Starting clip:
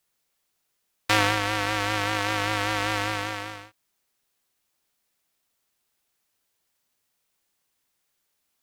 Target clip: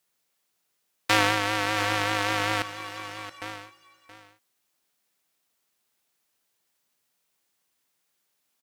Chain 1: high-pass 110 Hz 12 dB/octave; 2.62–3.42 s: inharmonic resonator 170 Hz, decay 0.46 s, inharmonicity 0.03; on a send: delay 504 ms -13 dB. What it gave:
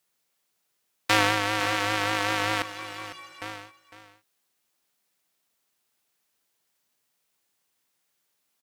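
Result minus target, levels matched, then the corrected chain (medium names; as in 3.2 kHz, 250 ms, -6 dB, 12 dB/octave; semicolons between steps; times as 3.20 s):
echo 170 ms early
high-pass 110 Hz 12 dB/octave; 2.62–3.42 s: inharmonic resonator 170 Hz, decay 0.46 s, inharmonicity 0.03; on a send: delay 674 ms -13 dB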